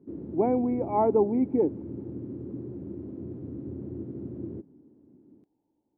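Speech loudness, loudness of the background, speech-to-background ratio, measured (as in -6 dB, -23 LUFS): -26.0 LUFS, -38.5 LUFS, 12.5 dB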